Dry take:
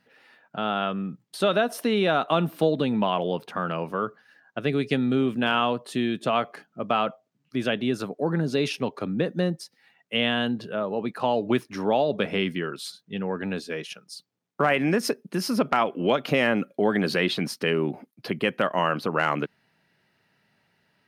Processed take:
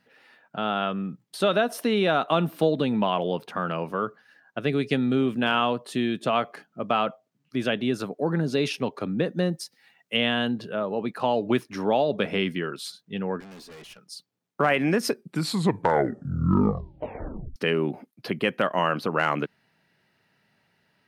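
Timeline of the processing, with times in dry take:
0:09.52–0:10.17: high-shelf EQ 4,100 Hz +6 dB
0:13.40–0:13.99: tube saturation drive 43 dB, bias 0.45
0:15.06: tape stop 2.50 s

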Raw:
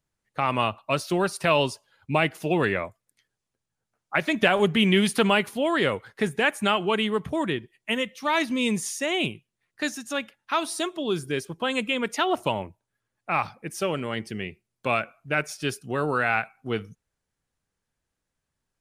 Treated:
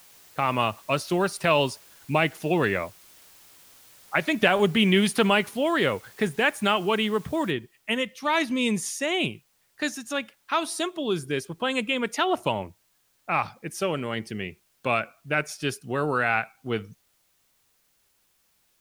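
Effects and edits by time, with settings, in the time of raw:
0:07.51: noise floor change −53 dB −68 dB

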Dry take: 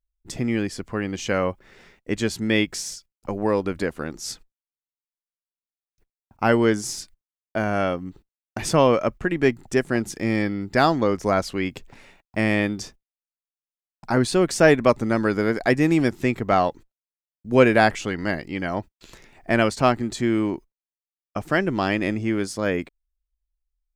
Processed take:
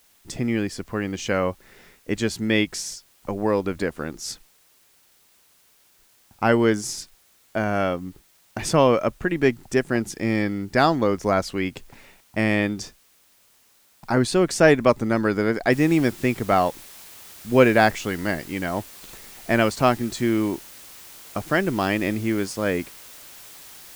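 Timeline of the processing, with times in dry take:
0:15.72: noise floor change −59 dB −44 dB

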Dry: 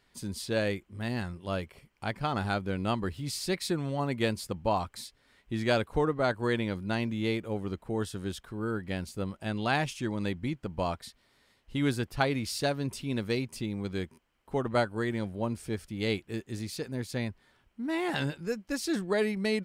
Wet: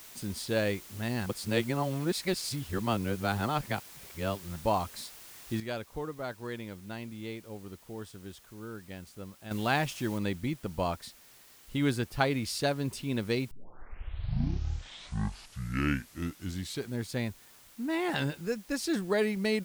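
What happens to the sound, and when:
0:01.26–0:04.56: reverse
0:05.60–0:09.51: clip gain −10 dB
0:10.18: noise floor change −50 dB −57 dB
0:13.51: tape start 3.63 s

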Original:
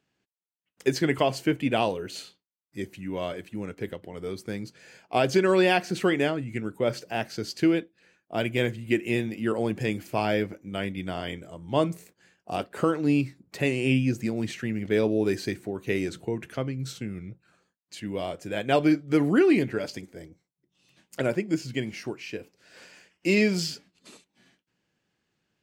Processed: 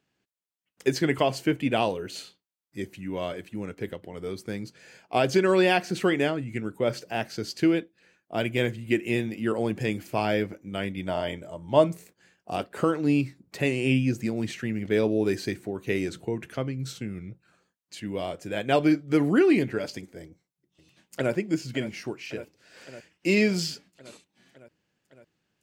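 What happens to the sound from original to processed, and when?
0:11.00–0:11.92: hollow resonant body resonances 610/890 Hz, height 12 dB → 8 dB
0:20.22–0:21.32: delay throw 560 ms, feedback 75%, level −13.5 dB

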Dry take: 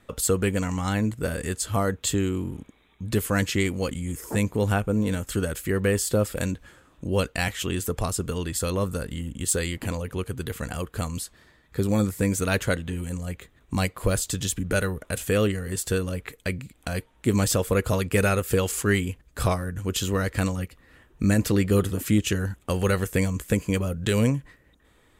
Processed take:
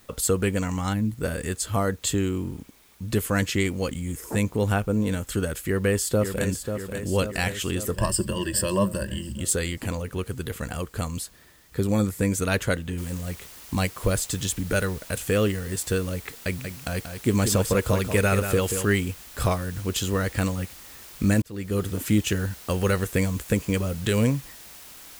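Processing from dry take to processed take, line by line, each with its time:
0:00.94–0:01.15: gain on a spectral selection 310–9,400 Hz −11 dB
0:05.67–0:06.46: delay throw 540 ms, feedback 65%, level −7.5 dB
0:07.94–0:09.41: EQ curve with evenly spaced ripples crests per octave 1.3, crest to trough 16 dB
0:12.98: noise floor change −58 dB −45 dB
0:16.39–0:18.85: single-tap delay 184 ms −8 dB
0:21.42–0:22.02: fade in

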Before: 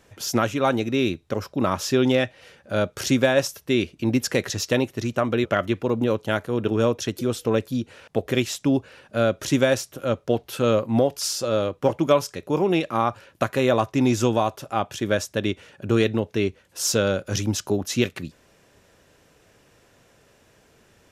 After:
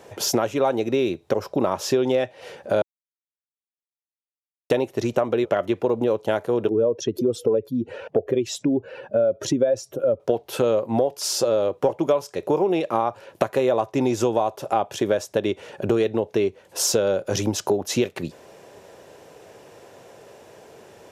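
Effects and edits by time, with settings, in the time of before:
0:02.82–0:04.70: silence
0:06.69–0:10.20: expanding power law on the bin magnitudes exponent 1.7
whole clip: high-pass filter 99 Hz; flat-topped bell 590 Hz +8.5 dB; downward compressor 4 to 1, threshold −26 dBFS; level +6 dB

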